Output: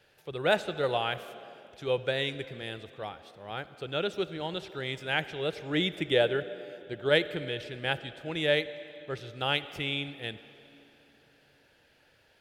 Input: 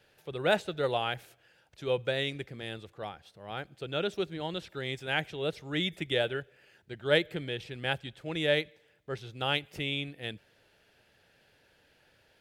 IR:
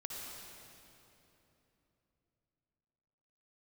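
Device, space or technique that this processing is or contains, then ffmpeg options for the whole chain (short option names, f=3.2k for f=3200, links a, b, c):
filtered reverb send: -filter_complex "[0:a]asettb=1/sr,asplit=3[a][b][c];[a]atrim=end=5.564[d];[b]atrim=start=5.56:end=7.09,asetpts=PTS-STARTPTS,afade=t=in:d=0.004:c=qsin,afade=t=out:st=1.526:d=0.004:c=qsin,equalizer=f=410:t=o:w=2.5:g=5[e];[c]atrim=start=7.086[f];[d][e]acrossfade=d=0.004:c1=hsin:c2=qsin[g];[g][f]acrossfade=d=0.004:c1=qsin:c2=hsin,asplit=2[h][i];[i]highpass=f=190:w=0.5412,highpass=f=190:w=1.3066,lowpass=7.1k[j];[1:a]atrim=start_sample=2205[k];[j][k]afir=irnorm=-1:irlink=0,volume=-10.5dB[l];[h][l]amix=inputs=2:normalize=0"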